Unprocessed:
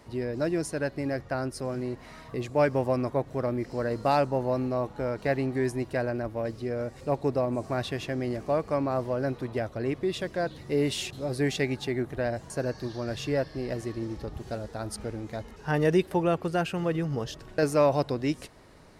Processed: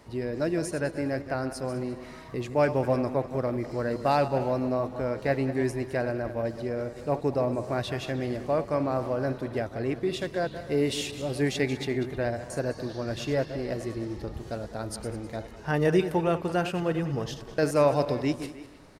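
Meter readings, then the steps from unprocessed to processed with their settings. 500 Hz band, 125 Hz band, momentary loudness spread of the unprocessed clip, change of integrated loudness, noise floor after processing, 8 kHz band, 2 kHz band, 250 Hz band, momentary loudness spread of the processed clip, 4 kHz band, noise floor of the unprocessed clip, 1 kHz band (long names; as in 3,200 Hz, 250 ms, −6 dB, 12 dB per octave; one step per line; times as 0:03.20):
+0.5 dB, +0.5 dB, 10 LU, +0.5 dB, −44 dBFS, +0.5 dB, +0.5 dB, +0.5 dB, 10 LU, +0.5 dB, −48 dBFS, +0.5 dB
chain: feedback delay that plays each chunk backwards 102 ms, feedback 49%, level −11 dB
far-end echo of a speakerphone 310 ms, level −15 dB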